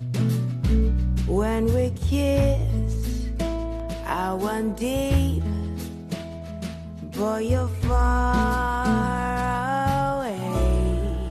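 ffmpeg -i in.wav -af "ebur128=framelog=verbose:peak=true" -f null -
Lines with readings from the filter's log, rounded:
Integrated loudness:
  I:         -24.5 LUFS
  Threshold: -34.6 LUFS
Loudness range:
  LRA:         3.8 LU
  Threshold: -44.9 LUFS
  LRA low:   -27.0 LUFS
  LRA high:  -23.2 LUFS
True peak:
  Peak:       -9.8 dBFS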